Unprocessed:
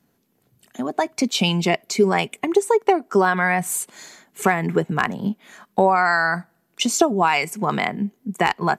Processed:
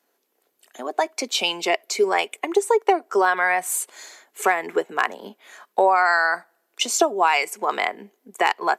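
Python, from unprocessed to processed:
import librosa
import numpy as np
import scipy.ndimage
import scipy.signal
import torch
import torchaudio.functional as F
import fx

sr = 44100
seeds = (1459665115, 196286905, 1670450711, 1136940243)

y = scipy.signal.sosfilt(scipy.signal.butter(4, 380.0, 'highpass', fs=sr, output='sos'), x)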